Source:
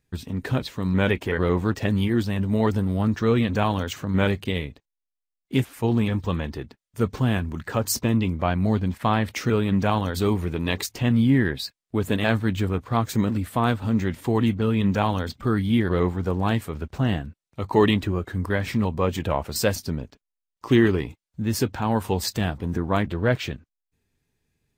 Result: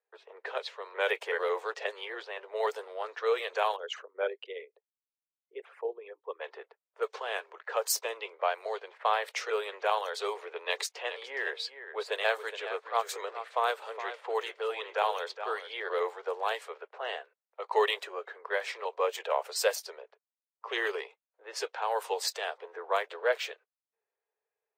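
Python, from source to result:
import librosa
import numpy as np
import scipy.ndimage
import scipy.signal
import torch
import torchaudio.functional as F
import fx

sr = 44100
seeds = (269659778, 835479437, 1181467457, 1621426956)

y = fx.envelope_sharpen(x, sr, power=2.0, at=(3.75, 6.4), fade=0.02)
y = fx.echo_single(y, sr, ms=416, db=-11.0, at=(10.57, 15.88))
y = scipy.signal.sosfilt(scipy.signal.butter(12, 430.0, 'highpass', fs=sr, output='sos'), y)
y = fx.env_lowpass(y, sr, base_hz=1200.0, full_db=-23.5)
y = y * librosa.db_to_amplitude(-3.5)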